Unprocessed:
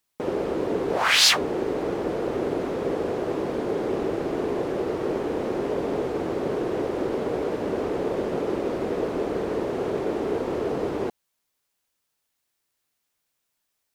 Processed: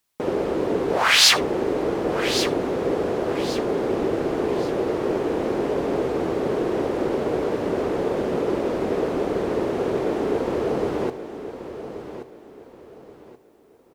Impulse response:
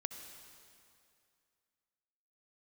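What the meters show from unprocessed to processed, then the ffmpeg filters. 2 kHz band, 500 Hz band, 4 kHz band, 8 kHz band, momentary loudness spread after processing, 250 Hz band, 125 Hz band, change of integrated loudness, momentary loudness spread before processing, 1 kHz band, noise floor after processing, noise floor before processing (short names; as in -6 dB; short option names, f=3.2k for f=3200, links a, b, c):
+3.0 dB, +3.0 dB, +3.0 dB, n/a, 7 LU, +3.0 dB, +3.0 dB, +3.0 dB, 4 LU, +3.0 dB, -54 dBFS, -78 dBFS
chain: -filter_complex "[0:a]aecho=1:1:1129|2258|3387:0.282|0.0874|0.0271,asplit=2[a][b];[1:a]atrim=start_sample=2205,atrim=end_sample=3528[c];[b][c]afir=irnorm=-1:irlink=0,volume=6dB[d];[a][d]amix=inputs=2:normalize=0,volume=-5.5dB"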